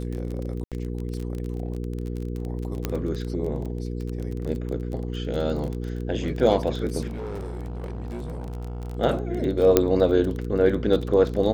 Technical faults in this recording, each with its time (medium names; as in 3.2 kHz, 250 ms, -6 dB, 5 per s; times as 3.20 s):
crackle 26 per s -29 dBFS
hum 60 Hz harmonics 8 -30 dBFS
0.64–0.72 s: dropout 77 ms
2.85 s: pop -11 dBFS
7.07–8.97 s: clipped -29 dBFS
9.77 s: pop -3 dBFS